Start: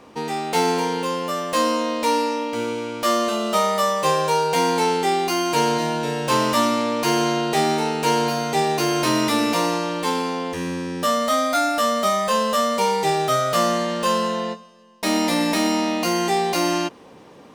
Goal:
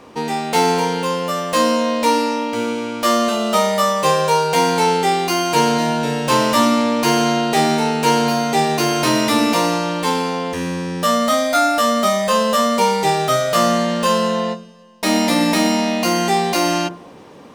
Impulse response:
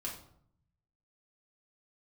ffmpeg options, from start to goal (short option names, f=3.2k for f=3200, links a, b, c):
-filter_complex "[0:a]asplit=2[a][b];[1:a]atrim=start_sample=2205,lowpass=f=1.5k:w=0.5412,lowpass=f=1.5k:w=1.3066,adelay=21[c];[b][c]afir=irnorm=-1:irlink=0,volume=-11dB[d];[a][d]amix=inputs=2:normalize=0,volume=4dB"